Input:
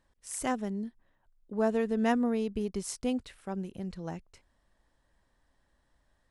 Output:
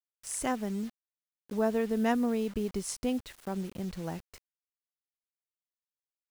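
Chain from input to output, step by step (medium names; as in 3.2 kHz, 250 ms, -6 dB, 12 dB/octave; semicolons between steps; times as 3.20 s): in parallel at +0.5 dB: compression 5:1, threshold -41 dBFS, peak gain reduction 17 dB; on the sum: bit crusher 8-bit; trim -2 dB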